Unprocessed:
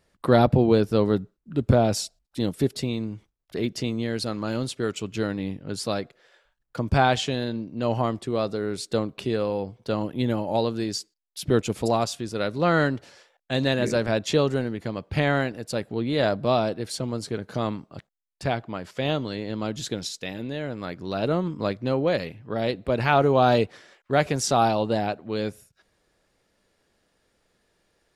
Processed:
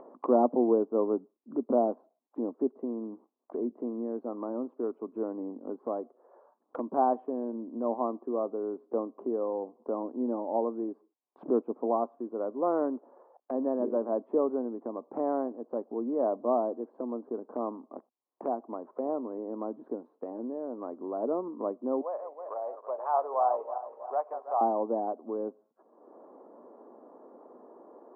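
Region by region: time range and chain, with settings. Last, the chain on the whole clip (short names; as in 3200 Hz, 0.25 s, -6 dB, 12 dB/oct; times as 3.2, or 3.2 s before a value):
22.01–24.61 regenerating reverse delay 0.161 s, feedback 50%, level -9 dB + HPF 650 Hz 24 dB/oct
whole clip: Chebyshev band-pass 240–1100 Hz, order 4; upward compressor, threshold -27 dBFS; gain -4 dB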